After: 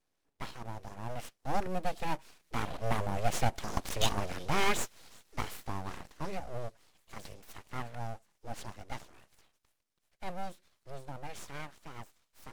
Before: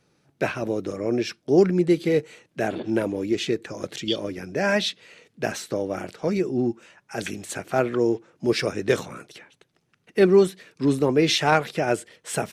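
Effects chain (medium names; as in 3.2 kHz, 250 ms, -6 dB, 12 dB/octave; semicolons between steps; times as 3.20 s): CVSD coder 64 kbps; Doppler pass-by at 3.89 s, 7 m/s, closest 4.9 m; on a send: feedback echo behind a high-pass 367 ms, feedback 68%, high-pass 4.3 kHz, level -20.5 dB; on the sum: full-wave rectifier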